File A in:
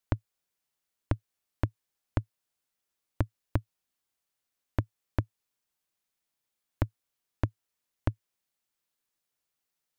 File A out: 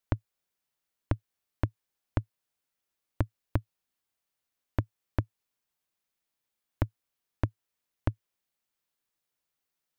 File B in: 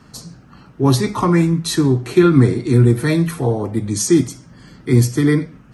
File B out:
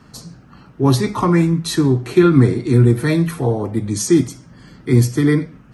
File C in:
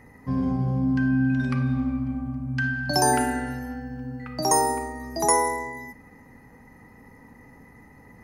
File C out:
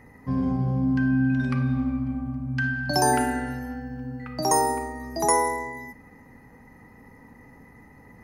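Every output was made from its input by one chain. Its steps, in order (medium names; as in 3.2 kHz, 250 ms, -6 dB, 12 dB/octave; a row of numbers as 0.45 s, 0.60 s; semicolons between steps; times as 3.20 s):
peaking EQ 7.9 kHz -2.5 dB 1.7 oct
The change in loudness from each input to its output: 0.0 LU, 0.0 LU, -0.5 LU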